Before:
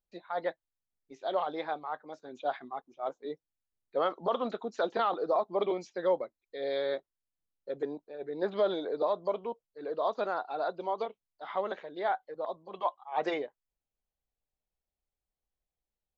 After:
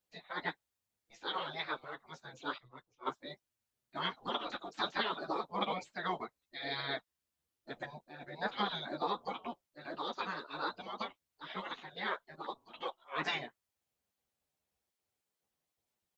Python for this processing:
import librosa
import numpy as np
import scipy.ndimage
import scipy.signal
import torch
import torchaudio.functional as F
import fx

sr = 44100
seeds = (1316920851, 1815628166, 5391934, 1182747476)

y = fx.chorus_voices(x, sr, voices=2, hz=1.1, base_ms=11, depth_ms=3.0, mix_pct=45)
y = fx.spec_gate(y, sr, threshold_db=-15, keep='weak')
y = fx.band_widen(y, sr, depth_pct=100, at=(2.58, 3.21))
y = y * 10.0 ** (9.5 / 20.0)